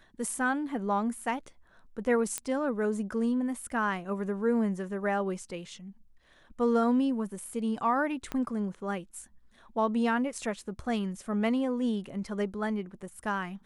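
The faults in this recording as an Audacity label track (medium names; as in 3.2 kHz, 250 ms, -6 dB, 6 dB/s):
2.380000	2.380000	pop -15 dBFS
8.320000	8.320000	pop -20 dBFS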